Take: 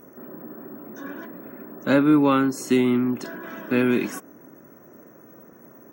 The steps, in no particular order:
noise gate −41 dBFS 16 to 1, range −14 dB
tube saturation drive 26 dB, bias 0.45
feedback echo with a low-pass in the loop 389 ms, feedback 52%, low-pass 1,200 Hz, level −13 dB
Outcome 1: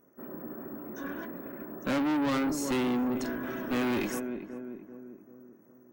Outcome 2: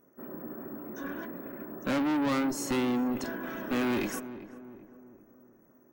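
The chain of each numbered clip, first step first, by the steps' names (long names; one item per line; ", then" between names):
noise gate, then feedback echo with a low-pass in the loop, then tube saturation
noise gate, then tube saturation, then feedback echo with a low-pass in the loop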